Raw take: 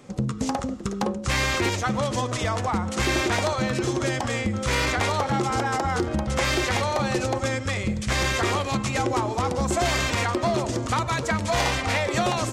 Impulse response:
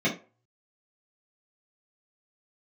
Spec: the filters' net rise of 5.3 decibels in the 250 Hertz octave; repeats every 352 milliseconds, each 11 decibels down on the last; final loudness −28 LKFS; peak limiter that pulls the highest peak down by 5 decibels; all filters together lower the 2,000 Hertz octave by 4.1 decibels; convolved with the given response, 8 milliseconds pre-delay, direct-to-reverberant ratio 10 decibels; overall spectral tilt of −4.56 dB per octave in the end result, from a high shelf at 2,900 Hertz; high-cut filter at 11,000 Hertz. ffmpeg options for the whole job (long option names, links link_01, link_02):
-filter_complex "[0:a]lowpass=11000,equalizer=frequency=250:width_type=o:gain=7,equalizer=frequency=2000:width_type=o:gain=-8.5,highshelf=frequency=2900:gain=8,alimiter=limit=-13.5dB:level=0:latency=1,aecho=1:1:352|704|1056:0.282|0.0789|0.0221,asplit=2[link_01][link_02];[1:a]atrim=start_sample=2205,adelay=8[link_03];[link_02][link_03]afir=irnorm=-1:irlink=0,volume=-23dB[link_04];[link_01][link_04]amix=inputs=2:normalize=0,volume=-6.5dB"